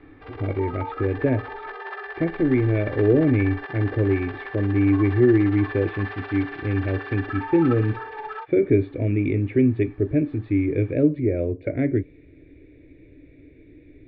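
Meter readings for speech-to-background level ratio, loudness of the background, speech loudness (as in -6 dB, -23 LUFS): 12.5 dB, -35.0 LUFS, -22.5 LUFS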